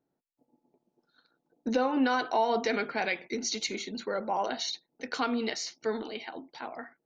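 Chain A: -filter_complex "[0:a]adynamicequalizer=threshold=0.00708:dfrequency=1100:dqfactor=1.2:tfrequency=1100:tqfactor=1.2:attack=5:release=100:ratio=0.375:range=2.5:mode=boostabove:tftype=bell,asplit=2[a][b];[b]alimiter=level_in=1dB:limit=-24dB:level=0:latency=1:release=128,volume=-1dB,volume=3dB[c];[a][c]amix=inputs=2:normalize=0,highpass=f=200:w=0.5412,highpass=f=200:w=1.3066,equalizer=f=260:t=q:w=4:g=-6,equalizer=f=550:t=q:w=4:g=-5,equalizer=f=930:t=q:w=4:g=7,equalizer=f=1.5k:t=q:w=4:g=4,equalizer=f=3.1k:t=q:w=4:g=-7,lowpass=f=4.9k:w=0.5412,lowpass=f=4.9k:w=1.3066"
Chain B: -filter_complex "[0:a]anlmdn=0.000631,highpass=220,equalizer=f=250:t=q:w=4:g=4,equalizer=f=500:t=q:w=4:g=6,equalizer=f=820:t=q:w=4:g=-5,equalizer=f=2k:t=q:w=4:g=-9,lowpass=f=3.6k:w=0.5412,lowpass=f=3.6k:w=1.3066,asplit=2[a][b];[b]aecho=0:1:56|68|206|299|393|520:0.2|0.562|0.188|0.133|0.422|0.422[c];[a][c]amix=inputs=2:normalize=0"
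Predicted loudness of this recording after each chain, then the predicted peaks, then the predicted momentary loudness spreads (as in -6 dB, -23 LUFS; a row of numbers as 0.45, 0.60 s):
-24.0, -28.5 LUFS; -7.0, -12.0 dBFS; 13, 12 LU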